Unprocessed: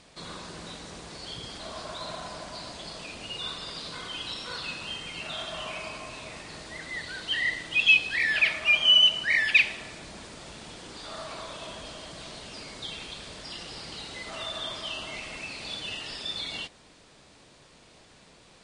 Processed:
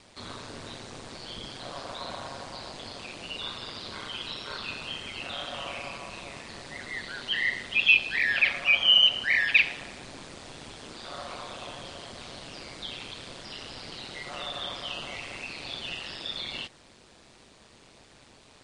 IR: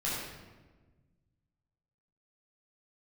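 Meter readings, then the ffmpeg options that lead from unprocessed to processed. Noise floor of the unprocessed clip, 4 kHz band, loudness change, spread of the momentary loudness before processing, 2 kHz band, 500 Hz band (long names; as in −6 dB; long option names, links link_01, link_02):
−56 dBFS, −1.0 dB, −0.5 dB, 21 LU, −0.5 dB, −0.5 dB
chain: -filter_complex "[0:a]aeval=exprs='val(0)*sin(2*PI*70*n/s)':channel_layout=same,acrossover=split=4800[link_01][link_02];[link_02]acompressor=threshold=-52dB:ratio=4:attack=1:release=60[link_03];[link_01][link_03]amix=inputs=2:normalize=0,volume=3dB"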